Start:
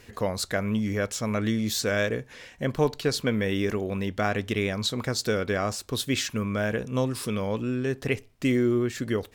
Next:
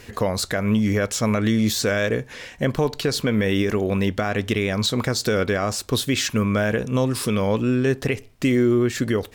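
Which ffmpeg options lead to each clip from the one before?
-af "deesser=0.55,alimiter=limit=-19dB:level=0:latency=1:release=138,volume=8dB"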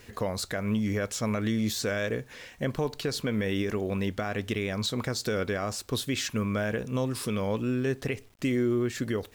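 -af "acrusher=bits=8:mix=0:aa=0.000001,volume=-8dB"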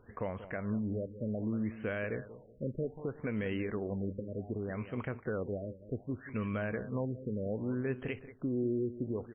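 -af "aecho=1:1:186|372|558:0.211|0.0697|0.023,afftfilt=real='re*lt(b*sr/1024,590*pow(3300/590,0.5+0.5*sin(2*PI*0.65*pts/sr)))':imag='im*lt(b*sr/1024,590*pow(3300/590,0.5+0.5*sin(2*PI*0.65*pts/sr)))':win_size=1024:overlap=0.75,volume=-6.5dB"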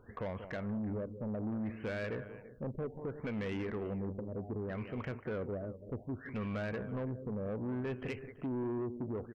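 -af "aecho=1:1:332:0.106,asoftclip=type=tanh:threshold=-33.5dB,volume=1dB"

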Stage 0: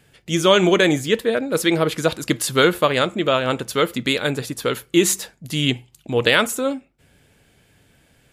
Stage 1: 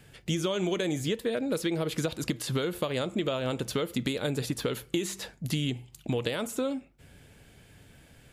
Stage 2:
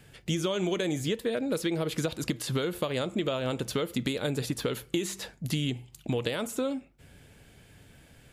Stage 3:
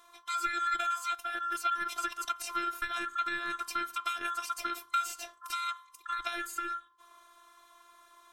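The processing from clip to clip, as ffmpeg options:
-filter_complex "[0:a]acompressor=threshold=-23dB:ratio=6,lowshelf=f=150:g=5,acrossover=split=990|2200|4600[a][b][c][d];[a]acompressor=threshold=-26dB:ratio=4[e];[b]acompressor=threshold=-48dB:ratio=4[f];[c]acompressor=threshold=-38dB:ratio=4[g];[d]acompressor=threshold=-41dB:ratio=4[h];[e][f][g][h]amix=inputs=4:normalize=0"
-af anull
-af "afftfilt=real='real(if(lt(b,960),b+48*(1-2*mod(floor(b/48),2)),b),0)':imag='imag(if(lt(b,960),b+48*(1-2*mod(floor(b/48),2)),b),0)':win_size=2048:overlap=0.75,afftfilt=real='hypot(re,im)*cos(PI*b)':imag='0':win_size=512:overlap=0.75,bandreject=f=54.48:t=h:w=4,bandreject=f=108.96:t=h:w=4,bandreject=f=163.44:t=h:w=4"

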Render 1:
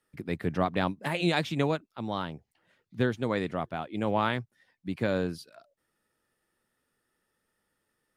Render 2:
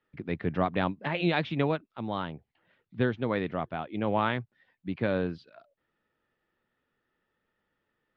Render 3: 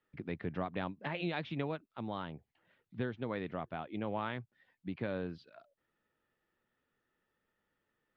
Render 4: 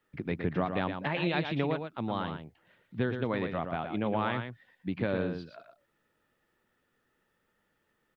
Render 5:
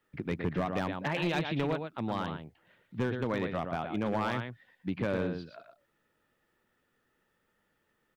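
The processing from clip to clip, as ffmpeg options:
-af "lowpass=f=3.6k:w=0.5412,lowpass=f=3.6k:w=1.3066"
-af "acompressor=threshold=-34dB:ratio=2,volume=-3.5dB"
-af "aecho=1:1:116:0.447,volume=6.5dB"
-af "asoftclip=type=hard:threshold=-23.5dB"

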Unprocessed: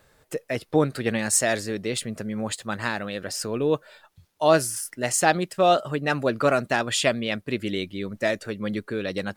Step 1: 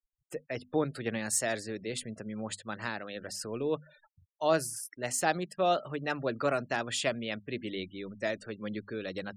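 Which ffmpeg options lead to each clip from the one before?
-filter_complex "[0:a]bandreject=f=50:t=h:w=6,bandreject=f=100:t=h:w=6,bandreject=f=150:t=h:w=6,bandreject=f=200:t=h:w=6,bandreject=f=250:t=h:w=6,afftfilt=real='re*gte(hypot(re,im),0.00794)':imag='im*gte(hypot(re,im),0.00794)':win_size=1024:overlap=0.75,acrossover=split=370|7000[a][b][c];[c]acompressor=mode=upward:threshold=-53dB:ratio=2.5[d];[a][b][d]amix=inputs=3:normalize=0,volume=-8.5dB"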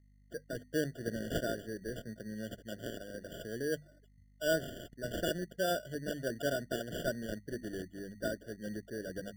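-af "aeval=exprs='val(0)+0.00112*(sin(2*PI*50*n/s)+sin(2*PI*2*50*n/s)/2+sin(2*PI*3*50*n/s)/3+sin(2*PI*4*50*n/s)/4+sin(2*PI*5*50*n/s)/5)':c=same,acrusher=samples=21:mix=1:aa=0.000001,afftfilt=real='re*eq(mod(floor(b*sr/1024/710),2),0)':imag='im*eq(mod(floor(b*sr/1024/710),2),0)':win_size=1024:overlap=0.75,volume=-3.5dB"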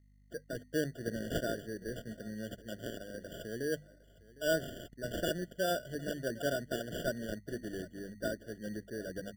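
-af "aecho=1:1:758:0.1"

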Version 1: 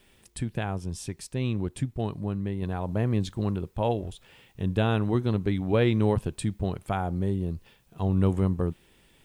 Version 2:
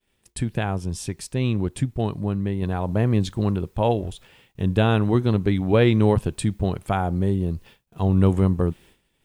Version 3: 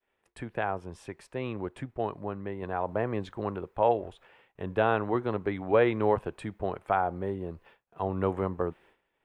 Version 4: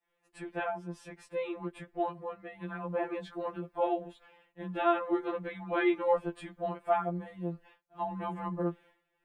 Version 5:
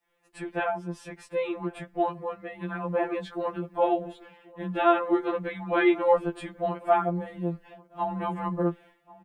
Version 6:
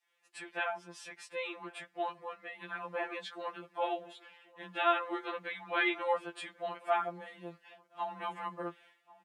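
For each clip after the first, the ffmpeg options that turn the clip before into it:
-af "agate=range=-33dB:threshold=-49dB:ratio=3:detection=peak,volume=5.5dB"
-filter_complex "[0:a]acrossover=split=410 2200:gain=0.141 1 0.0794[a][b][c];[a][b][c]amix=inputs=3:normalize=0"
-af "afftfilt=real='re*2.83*eq(mod(b,8),0)':imag='im*2.83*eq(mod(b,8),0)':win_size=2048:overlap=0.75"
-filter_complex "[0:a]asplit=2[a][b];[b]adelay=1089,lowpass=f=970:p=1,volume=-20dB,asplit=2[c][d];[d]adelay=1089,lowpass=f=970:p=1,volume=0.18[e];[a][c][e]amix=inputs=3:normalize=0,volume=6dB"
-af "bandpass=f=4.4k:t=q:w=0.55:csg=0,volume=2dB"

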